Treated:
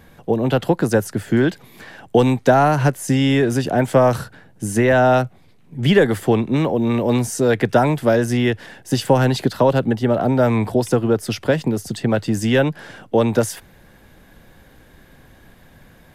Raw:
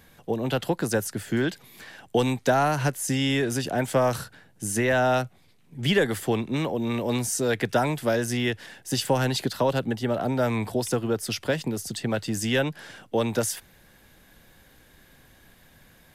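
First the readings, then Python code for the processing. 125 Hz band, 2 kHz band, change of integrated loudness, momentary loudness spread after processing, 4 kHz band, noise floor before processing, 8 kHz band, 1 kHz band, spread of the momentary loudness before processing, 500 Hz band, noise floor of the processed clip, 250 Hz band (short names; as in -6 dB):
+9.0 dB, +5.0 dB, +8.0 dB, 8 LU, +2.0 dB, -57 dBFS, 0.0 dB, +7.5 dB, 8 LU, +8.5 dB, -50 dBFS, +9.0 dB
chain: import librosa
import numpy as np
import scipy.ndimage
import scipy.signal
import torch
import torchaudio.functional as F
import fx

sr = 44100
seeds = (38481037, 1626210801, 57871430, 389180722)

y = fx.high_shelf(x, sr, hz=2000.0, db=-9.5)
y = y * librosa.db_to_amplitude(9.0)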